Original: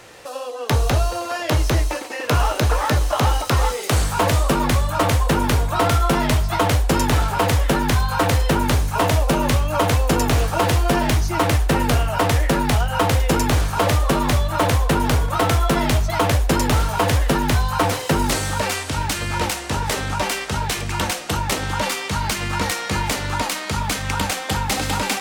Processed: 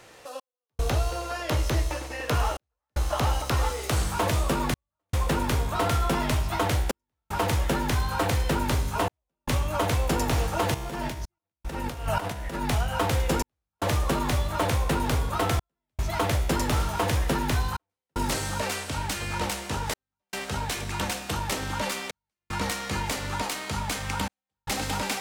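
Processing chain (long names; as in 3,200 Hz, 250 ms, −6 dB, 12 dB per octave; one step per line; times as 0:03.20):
0:10.74–0:12.63: compressor whose output falls as the input rises −22 dBFS, ratio −0.5
tuned comb filter 66 Hz, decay 1.8 s, harmonics all, mix 70%
gate pattern "xx..xxxxxxx" 76 BPM −60 dB
level +2 dB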